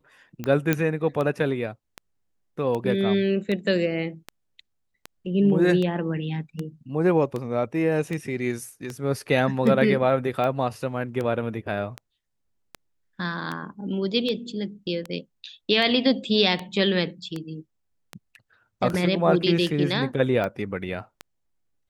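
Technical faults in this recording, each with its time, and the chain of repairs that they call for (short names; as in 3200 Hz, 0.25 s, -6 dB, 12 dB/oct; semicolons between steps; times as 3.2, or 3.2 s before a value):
tick 78 rpm -17 dBFS
0.73 pop -8 dBFS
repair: de-click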